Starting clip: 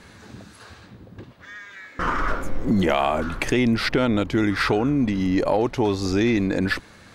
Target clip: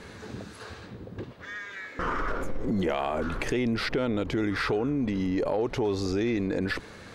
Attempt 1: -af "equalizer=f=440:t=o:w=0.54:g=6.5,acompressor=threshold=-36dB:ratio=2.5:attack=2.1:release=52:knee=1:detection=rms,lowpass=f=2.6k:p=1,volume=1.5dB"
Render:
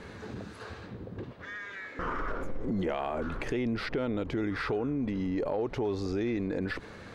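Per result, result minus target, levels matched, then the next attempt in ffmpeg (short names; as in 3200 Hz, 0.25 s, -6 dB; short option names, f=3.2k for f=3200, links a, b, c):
8000 Hz band -5.0 dB; compressor: peak gain reduction +3.5 dB
-af "equalizer=f=440:t=o:w=0.54:g=6.5,acompressor=threshold=-36dB:ratio=2.5:attack=2.1:release=52:knee=1:detection=rms,lowpass=f=8.2k:p=1,volume=1.5dB"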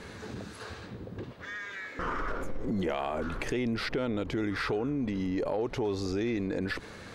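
compressor: peak gain reduction +3.5 dB
-af "equalizer=f=440:t=o:w=0.54:g=6.5,acompressor=threshold=-30dB:ratio=2.5:attack=2.1:release=52:knee=1:detection=rms,lowpass=f=8.2k:p=1,volume=1.5dB"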